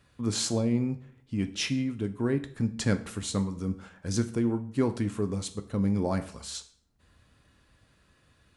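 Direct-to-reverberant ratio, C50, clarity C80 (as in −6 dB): 8.0 dB, 14.5 dB, 18.0 dB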